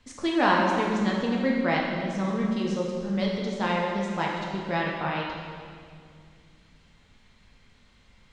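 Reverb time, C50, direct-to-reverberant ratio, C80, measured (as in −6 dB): 2.2 s, 0.5 dB, −2.5 dB, 2.5 dB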